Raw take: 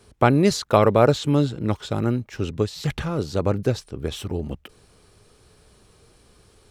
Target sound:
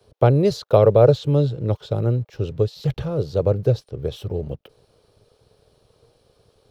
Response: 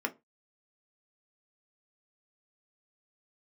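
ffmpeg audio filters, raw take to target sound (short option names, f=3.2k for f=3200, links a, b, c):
-filter_complex "[0:a]equalizer=f=125:t=o:w=1:g=10,equalizer=f=250:t=o:w=1:g=-8,equalizer=f=500:t=o:w=1:g=11,equalizer=f=1k:t=o:w=1:g=-4,equalizer=f=2k:t=o:w=1:g=-8,equalizer=f=4k:t=o:w=1:g=3,equalizer=f=8k:t=o:w=1:g=-11,acrossover=split=510|1000[a][b][c];[a]aeval=exprs='sgn(val(0))*max(abs(val(0))-0.00188,0)':c=same[d];[d][b][c]amix=inputs=3:normalize=0,volume=-3dB"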